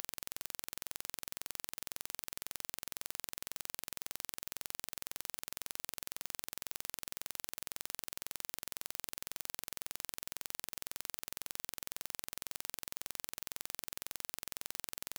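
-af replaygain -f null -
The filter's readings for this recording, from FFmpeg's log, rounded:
track_gain = +30.0 dB
track_peak = 0.162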